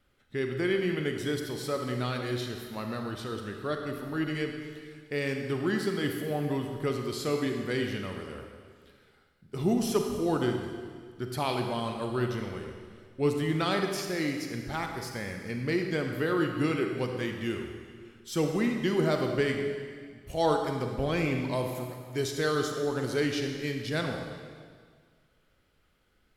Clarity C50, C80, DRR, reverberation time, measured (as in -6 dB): 4.0 dB, 5.5 dB, 3.5 dB, 1.8 s